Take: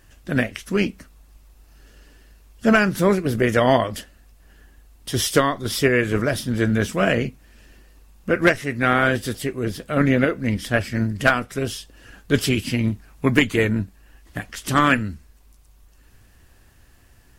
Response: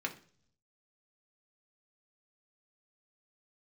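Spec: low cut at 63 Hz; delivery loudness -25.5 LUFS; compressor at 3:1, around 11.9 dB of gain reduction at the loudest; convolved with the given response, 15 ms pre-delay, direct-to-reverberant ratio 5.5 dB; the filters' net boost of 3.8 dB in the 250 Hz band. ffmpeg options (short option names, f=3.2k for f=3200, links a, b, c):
-filter_complex "[0:a]highpass=63,equalizer=f=250:t=o:g=4.5,acompressor=threshold=-26dB:ratio=3,asplit=2[a][b];[1:a]atrim=start_sample=2205,adelay=15[c];[b][c]afir=irnorm=-1:irlink=0,volume=-9dB[d];[a][d]amix=inputs=2:normalize=0,volume=2.5dB"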